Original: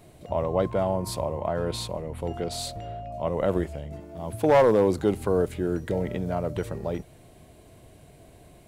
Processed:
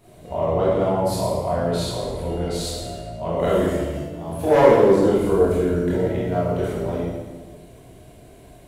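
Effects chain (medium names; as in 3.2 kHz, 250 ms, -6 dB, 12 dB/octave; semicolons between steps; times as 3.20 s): 3.39–4.00 s: treble shelf 2.4 kHz +10.5 dB; reverberation RT60 1.3 s, pre-delay 19 ms, DRR -8.5 dB; trim -4 dB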